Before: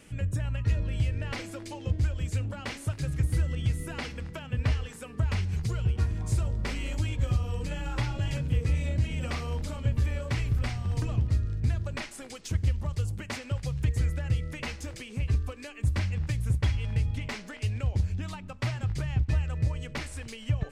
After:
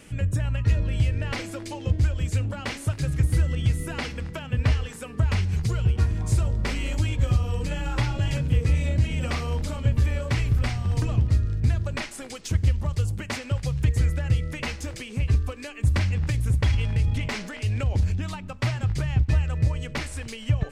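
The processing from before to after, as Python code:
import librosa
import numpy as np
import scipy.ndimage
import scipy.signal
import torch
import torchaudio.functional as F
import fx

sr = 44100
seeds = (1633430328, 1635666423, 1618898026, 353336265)

y = fx.transient(x, sr, attack_db=-3, sustain_db=5, at=(15.89, 18.15), fade=0.02)
y = y * librosa.db_to_amplitude(5.0)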